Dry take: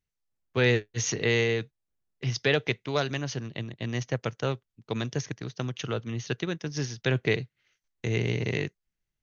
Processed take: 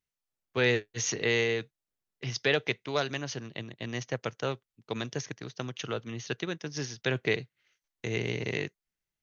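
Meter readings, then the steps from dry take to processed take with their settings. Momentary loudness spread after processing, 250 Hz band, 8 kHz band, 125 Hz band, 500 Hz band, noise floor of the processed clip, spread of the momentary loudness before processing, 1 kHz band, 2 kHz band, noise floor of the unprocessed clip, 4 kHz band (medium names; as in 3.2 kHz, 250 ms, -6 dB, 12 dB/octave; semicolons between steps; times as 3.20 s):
13 LU, -4.0 dB, no reading, -7.0 dB, -2.0 dB, under -85 dBFS, 11 LU, -1.5 dB, -1.0 dB, under -85 dBFS, -1.0 dB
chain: bass shelf 170 Hz -9.5 dB; trim -1 dB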